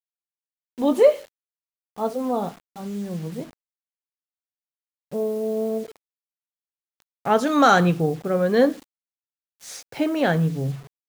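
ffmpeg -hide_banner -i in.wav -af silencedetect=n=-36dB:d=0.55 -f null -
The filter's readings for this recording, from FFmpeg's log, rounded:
silence_start: 0.00
silence_end: 0.78 | silence_duration: 0.78
silence_start: 1.21
silence_end: 1.98 | silence_duration: 0.76
silence_start: 3.45
silence_end: 5.12 | silence_duration: 1.67
silence_start: 5.91
silence_end: 7.25 | silence_duration: 1.35
silence_start: 8.79
silence_end: 9.63 | silence_duration: 0.84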